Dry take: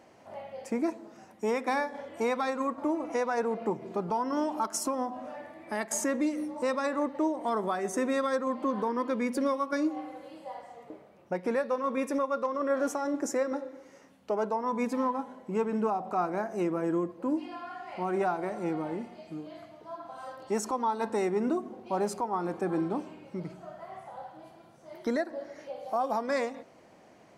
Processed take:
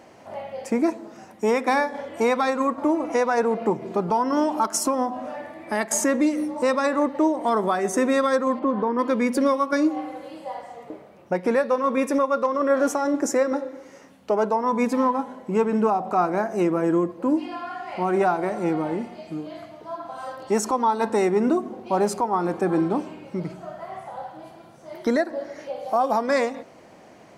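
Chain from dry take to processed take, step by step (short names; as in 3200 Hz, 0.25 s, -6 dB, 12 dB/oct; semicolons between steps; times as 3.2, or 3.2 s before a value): 8.59–8.99 tape spacing loss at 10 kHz 25 dB; gain +8 dB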